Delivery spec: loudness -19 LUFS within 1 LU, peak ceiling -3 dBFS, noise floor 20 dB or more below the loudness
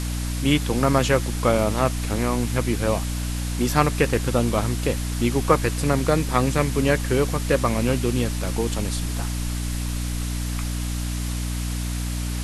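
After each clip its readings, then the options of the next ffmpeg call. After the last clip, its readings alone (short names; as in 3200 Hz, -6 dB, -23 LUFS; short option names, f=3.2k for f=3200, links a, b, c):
hum 60 Hz; harmonics up to 300 Hz; hum level -24 dBFS; noise floor -27 dBFS; noise floor target -44 dBFS; loudness -23.5 LUFS; peak -2.5 dBFS; loudness target -19.0 LUFS
-> -af "bandreject=f=60:t=h:w=4,bandreject=f=120:t=h:w=4,bandreject=f=180:t=h:w=4,bandreject=f=240:t=h:w=4,bandreject=f=300:t=h:w=4"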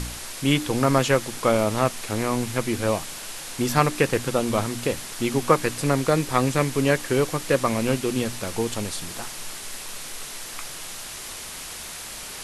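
hum none; noise floor -37 dBFS; noise floor target -45 dBFS
-> -af "afftdn=nr=8:nf=-37"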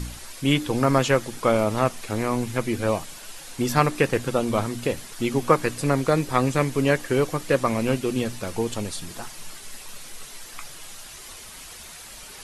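noise floor -42 dBFS; noise floor target -44 dBFS
-> -af "afftdn=nr=6:nf=-42"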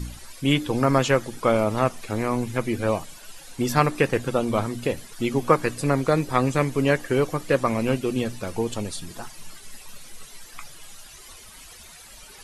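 noise floor -46 dBFS; loudness -24.0 LUFS; peak -3.5 dBFS; loudness target -19.0 LUFS
-> -af "volume=5dB,alimiter=limit=-3dB:level=0:latency=1"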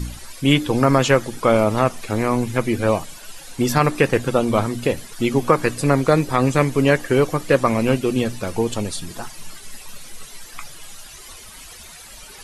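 loudness -19.5 LUFS; peak -3.0 dBFS; noise floor -41 dBFS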